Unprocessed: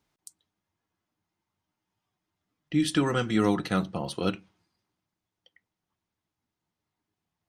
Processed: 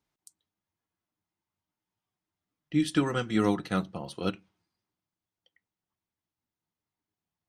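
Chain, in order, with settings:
expander for the loud parts 1.5 to 1, over −33 dBFS

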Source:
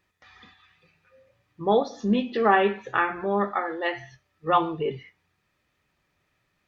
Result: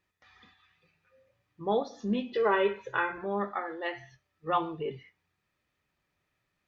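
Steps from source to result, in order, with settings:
0:02.33–0:03.18: comb filter 2 ms, depth 85%
level −7 dB

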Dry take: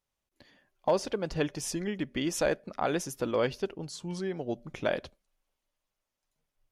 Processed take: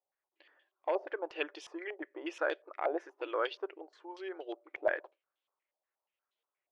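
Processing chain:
linear-phase brick-wall high-pass 300 Hz
low-pass on a step sequencer 8.4 Hz 730–3,400 Hz
level −7.5 dB

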